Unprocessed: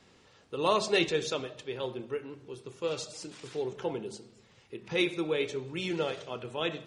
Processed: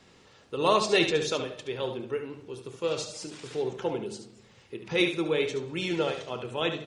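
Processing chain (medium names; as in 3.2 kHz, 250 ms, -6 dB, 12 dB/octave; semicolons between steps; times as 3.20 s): delay 72 ms -8.5 dB; trim +3 dB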